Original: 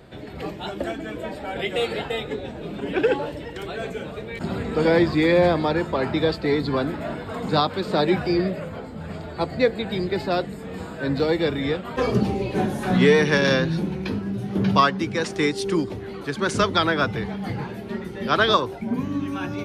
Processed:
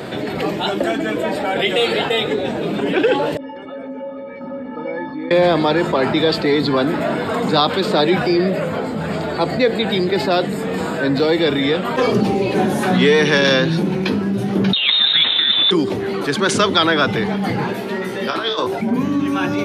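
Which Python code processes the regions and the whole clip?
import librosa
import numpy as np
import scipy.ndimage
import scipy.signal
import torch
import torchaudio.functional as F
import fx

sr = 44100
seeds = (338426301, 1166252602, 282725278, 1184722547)

y = fx.chain(x, sr, fx.lowpass(hz=1300.0, slope=12),
    fx.stiff_resonator(f0_hz=260.0, decay_s=0.44, stiffness=0.03), at=(3.37, 5.31))
y = fx.chain(y, sr, fx.delta_mod(bps=32000, step_db=-29.5),
    fx.freq_invert(carrier_hz=3900),
    fx.over_compress(threshold_db=-23.0, ratio=-0.5), at=(14.73, 15.71))
y = fx.chain(y, sr, fx.low_shelf(hz=210.0, db=-9.5),
    fx.over_compress(threshold_db=-24.0, ratio=-0.5),
    fx.comb_fb(f0_hz=63.0, decay_s=0.32, harmonics='all', damping=0.0, mix_pct=80), at=(17.73, 18.67))
y = fx.dynamic_eq(y, sr, hz=3300.0, q=2.5, threshold_db=-40.0, ratio=4.0, max_db=5)
y = scipy.signal.sosfilt(scipy.signal.butter(2, 170.0, 'highpass', fs=sr, output='sos'), y)
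y = fx.env_flatten(y, sr, amount_pct=50)
y = y * librosa.db_to_amplitude(2.0)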